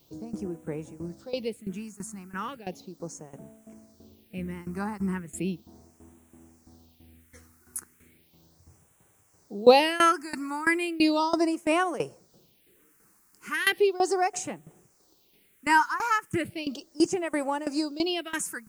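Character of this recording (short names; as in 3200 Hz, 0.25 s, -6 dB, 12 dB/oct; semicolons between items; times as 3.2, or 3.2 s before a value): tremolo saw down 3 Hz, depth 90%; a quantiser's noise floor 12-bit, dither triangular; phasing stages 4, 0.36 Hz, lowest notch 540–4500 Hz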